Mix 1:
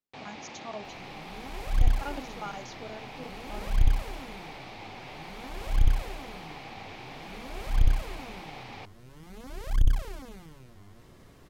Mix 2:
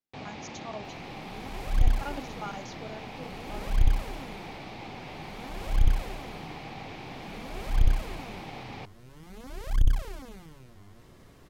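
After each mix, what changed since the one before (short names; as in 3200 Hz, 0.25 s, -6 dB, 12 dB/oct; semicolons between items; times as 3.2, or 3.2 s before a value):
first sound: add low shelf 300 Hz +9.5 dB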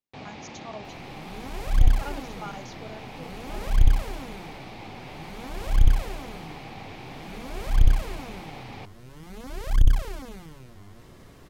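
second sound +4.5 dB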